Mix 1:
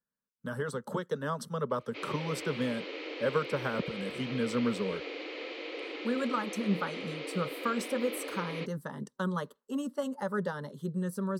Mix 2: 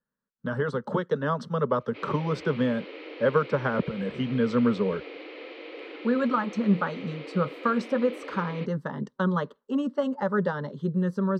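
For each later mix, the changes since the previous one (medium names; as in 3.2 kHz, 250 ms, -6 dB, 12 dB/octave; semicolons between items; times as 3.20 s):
speech +7.5 dB; master: add distance through air 200 m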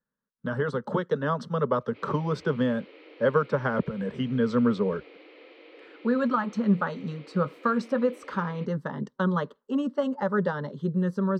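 background -9.0 dB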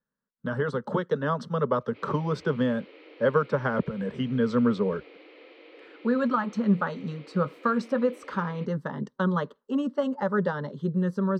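no change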